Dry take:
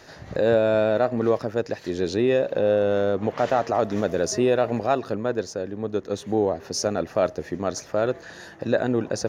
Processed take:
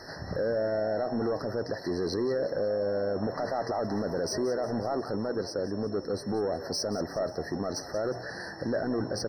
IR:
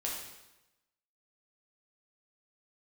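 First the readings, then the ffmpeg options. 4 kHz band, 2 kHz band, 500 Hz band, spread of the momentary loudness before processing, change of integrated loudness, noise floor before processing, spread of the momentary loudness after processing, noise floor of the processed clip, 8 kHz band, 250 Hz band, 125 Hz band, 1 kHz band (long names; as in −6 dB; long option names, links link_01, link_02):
−3.0 dB, −7.0 dB, −7.5 dB, 8 LU, −7.5 dB, −44 dBFS, 4 LU, −42 dBFS, −6.5 dB, −6.0 dB, −6.0 dB, −8.0 dB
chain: -filter_complex "[0:a]bandreject=frequency=60.62:width_type=h:width=4,bandreject=frequency=121.24:width_type=h:width=4,asplit=2[link_01][link_02];[link_02]acompressor=threshold=-31dB:ratio=6,volume=-1dB[link_03];[link_01][link_03]amix=inputs=2:normalize=0,alimiter=limit=-16.5dB:level=0:latency=1:release=11,asoftclip=type=tanh:threshold=-20dB,aeval=exprs='val(0)+0.00316*sin(2*PI*5400*n/s)':channel_layout=same,asplit=6[link_04][link_05][link_06][link_07][link_08][link_09];[link_05]adelay=180,afreqshift=74,volume=-14dB[link_10];[link_06]adelay=360,afreqshift=148,volume=-19.4dB[link_11];[link_07]adelay=540,afreqshift=222,volume=-24.7dB[link_12];[link_08]adelay=720,afreqshift=296,volume=-30.1dB[link_13];[link_09]adelay=900,afreqshift=370,volume=-35.4dB[link_14];[link_04][link_10][link_11][link_12][link_13][link_14]amix=inputs=6:normalize=0,afftfilt=real='re*eq(mod(floor(b*sr/1024/2000),2),0)':imag='im*eq(mod(floor(b*sr/1024/2000),2),0)':win_size=1024:overlap=0.75,volume=-2.5dB"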